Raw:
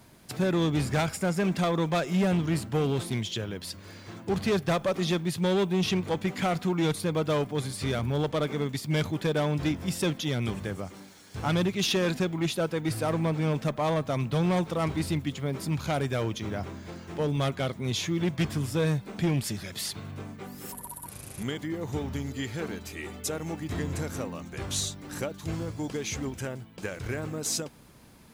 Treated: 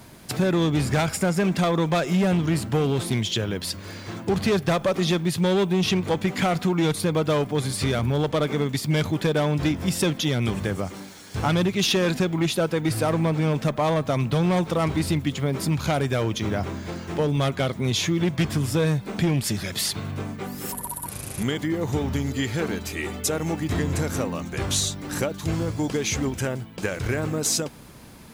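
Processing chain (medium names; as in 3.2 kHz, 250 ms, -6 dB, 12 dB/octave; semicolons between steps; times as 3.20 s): compression 2.5:1, threshold -29 dBFS, peak gain reduction 5 dB; trim +8.5 dB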